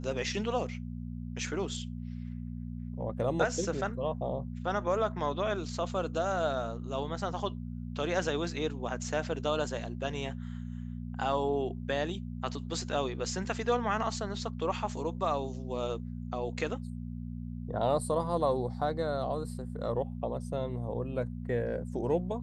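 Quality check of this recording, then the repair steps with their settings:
hum 60 Hz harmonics 4 -39 dBFS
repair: de-hum 60 Hz, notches 4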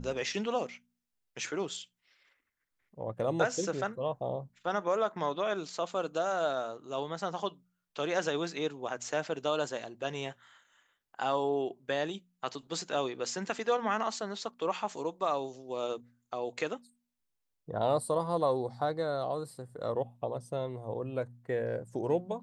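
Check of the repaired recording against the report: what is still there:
none

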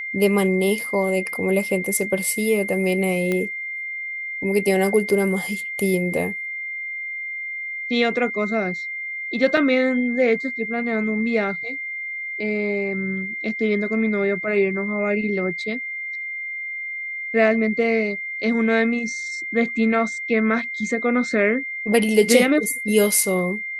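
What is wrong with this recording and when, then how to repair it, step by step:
tone 2100 Hz -27 dBFS
3.32 pop -11 dBFS
9.57 gap 3.4 ms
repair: de-click; notch 2100 Hz, Q 30; interpolate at 9.57, 3.4 ms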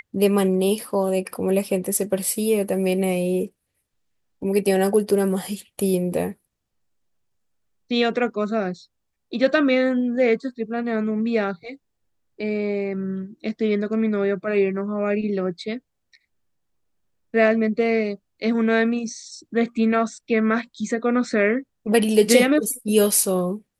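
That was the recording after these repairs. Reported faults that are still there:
none

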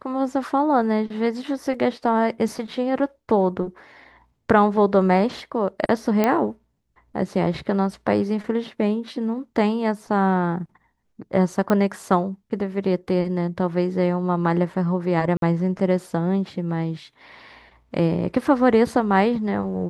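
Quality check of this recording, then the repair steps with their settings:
6.24 pop -7 dBFS
11.7 pop -10 dBFS
15.37–15.42 gap 52 ms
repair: de-click; interpolate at 15.37, 52 ms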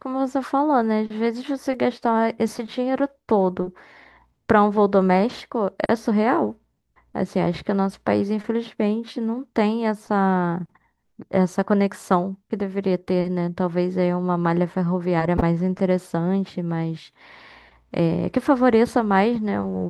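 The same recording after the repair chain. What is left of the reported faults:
none

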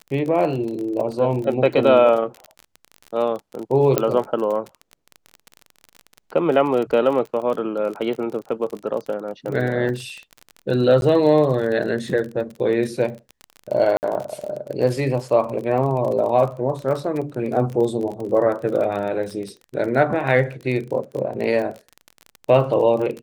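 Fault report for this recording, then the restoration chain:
crackle 30/s -27 dBFS
3.98 pop -3 dBFS
9.89 gap 2.7 ms
11.01–11.02 gap 11 ms
13.97–14.03 gap 59 ms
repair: de-click; interpolate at 9.89, 2.7 ms; interpolate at 11.01, 11 ms; interpolate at 13.97, 59 ms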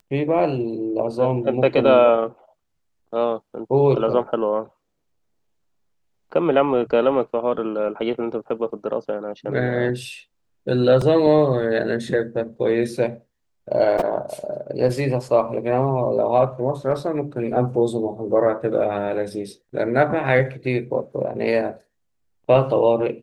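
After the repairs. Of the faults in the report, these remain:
none

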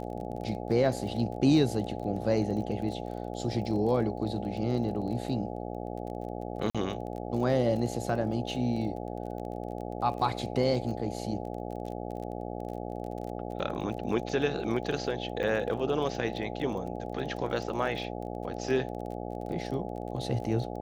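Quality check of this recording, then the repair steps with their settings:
buzz 60 Hz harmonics 14 -37 dBFS
crackle 24/s -38 dBFS
6.7–6.75 gap 46 ms
15.43 gap 2.1 ms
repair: de-click; de-hum 60 Hz, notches 14; interpolate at 6.7, 46 ms; interpolate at 15.43, 2.1 ms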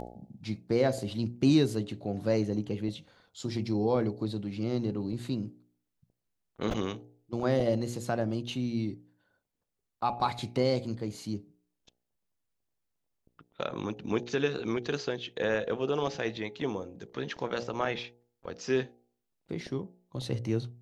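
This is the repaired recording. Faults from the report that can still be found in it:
none

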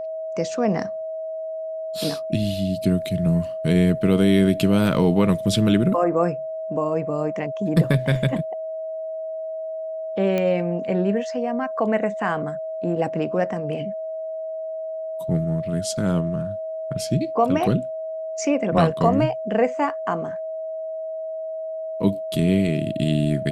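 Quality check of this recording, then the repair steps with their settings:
tone 640 Hz -27 dBFS
10.38 pop -12 dBFS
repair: de-click; notch 640 Hz, Q 30

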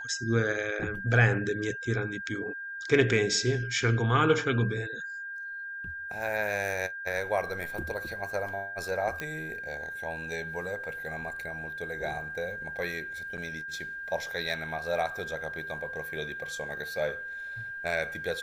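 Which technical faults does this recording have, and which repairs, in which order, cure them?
tone 1600 Hz -36 dBFS
9.2 pop -19 dBFS
13.37–13.38 gap 8.1 ms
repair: de-click; notch 1600 Hz, Q 30; interpolate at 13.37, 8.1 ms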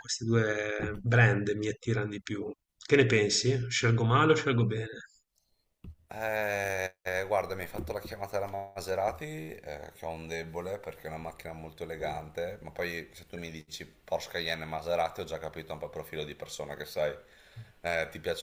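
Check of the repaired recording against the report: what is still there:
none

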